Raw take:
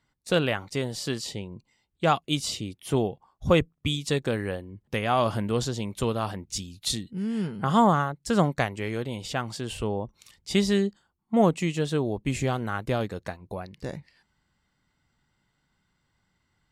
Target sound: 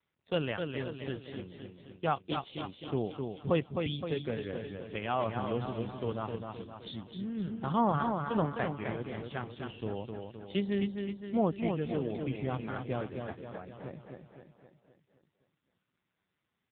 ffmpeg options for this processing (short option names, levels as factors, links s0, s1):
-af "aecho=1:1:260|520|780|1040|1300|1560|1820:0.562|0.304|0.164|0.0885|0.0478|0.0258|0.0139,volume=0.422" -ar 8000 -c:a libopencore_amrnb -b:a 5900